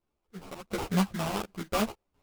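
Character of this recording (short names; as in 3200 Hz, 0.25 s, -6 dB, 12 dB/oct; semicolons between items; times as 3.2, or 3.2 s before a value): random-step tremolo 4.2 Hz, depth 80%; aliases and images of a low sample rate 1800 Hz, jitter 20%; a shimmering, thickened sound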